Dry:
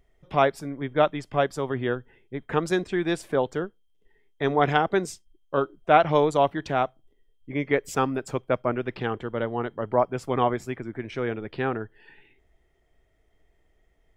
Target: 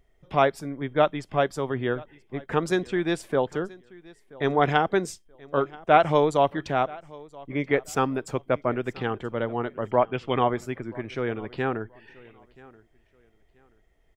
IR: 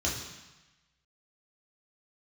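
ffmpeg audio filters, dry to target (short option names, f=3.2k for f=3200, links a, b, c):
-filter_complex "[0:a]asettb=1/sr,asplit=3[a][b][c];[a]atrim=end=9.854[d];[b]atrim=start=9.85:end=10.39,asetpts=PTS-STARTPTS,afade=t=in:d=0.004:c=qsin,afade=t=out:st=0.536:d=0.004:c=qsin,lowpass=f=3k:t=q:w=4.3[e];[c]atrim=start=10.386[f];[d][e]acrossfade=d=0.004:c1=hsin:c2=qsin[g];[g][f]acrossfade=d=0.004:c1=qsin:c2=hsin,asplit=2[h][i];[i]aecho=0:1:980|1960:0.075|0.0187[j];[h][j]amix=inputs=2:normalize=0"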